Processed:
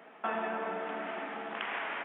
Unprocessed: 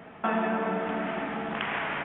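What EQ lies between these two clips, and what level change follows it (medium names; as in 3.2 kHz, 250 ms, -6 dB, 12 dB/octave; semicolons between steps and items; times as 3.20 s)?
Bessel high-pass 350 Hz, order 4; -5.0 dB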